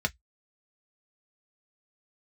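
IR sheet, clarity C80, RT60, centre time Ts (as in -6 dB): 49.5 dB, 0.10 s, 3 ms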